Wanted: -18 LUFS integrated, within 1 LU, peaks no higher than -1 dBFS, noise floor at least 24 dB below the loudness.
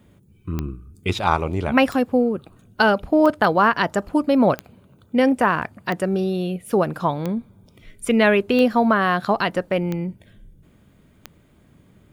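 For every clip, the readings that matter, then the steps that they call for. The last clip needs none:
clicks found 9; loudness -20.5 LUFS; peak level -2.5 dBFS; loudness target -18.0 LUFS
-> de-click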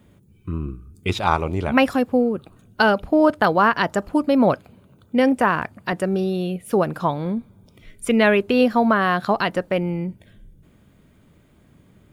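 clicks found 0; loudness -20.5 LUFS; peak level -2.5 dBFS; loudness target -18.0 LUFS
-> trim +2.5 dB; peak limiter -1 dBFS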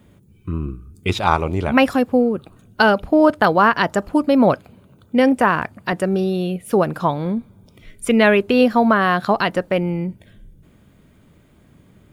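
loudness -18.0 LUFS; peak level -1.0 dBFS; noise floor -53 dBFS

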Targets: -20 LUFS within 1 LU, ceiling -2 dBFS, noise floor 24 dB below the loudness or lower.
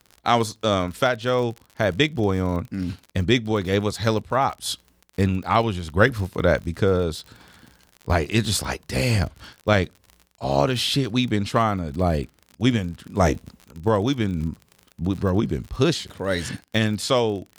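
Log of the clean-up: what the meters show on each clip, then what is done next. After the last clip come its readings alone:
tick rate 46 per s; loudness -23.0 LUFS; peak level -3.5 dBFS; loudness target -20.0 LUFS
-> de-click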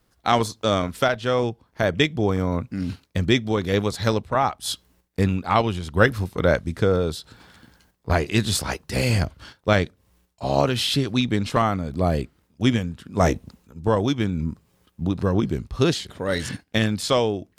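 tick rate 0.11 per s; loudness -23.5 LUFS; peak level -3.5 dBFS; loudness target -20.0 LUFS
-> trim +3.5 dB; peak limiter -2 dBFS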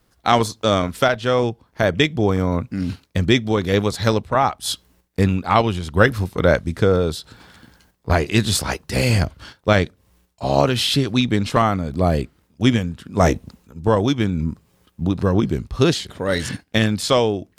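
loudness -20.0 LUFS; peak level -2.0 dBFS; noise floor -63 dBFS

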